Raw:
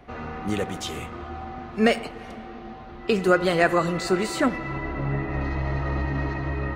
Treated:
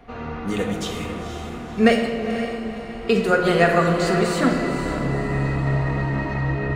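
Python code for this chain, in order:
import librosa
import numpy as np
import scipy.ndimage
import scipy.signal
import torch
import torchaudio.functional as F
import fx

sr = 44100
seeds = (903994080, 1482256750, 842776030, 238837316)

p1 = x + fx.echo_diffused(x, sr, ms=500, feedback_pct=43, wet_db=-9, dry=0)
y = fx.room_shoebox(p1, sr, seeds[0], volume_m3=1800.0, walls='mixed', distance_m=1.7)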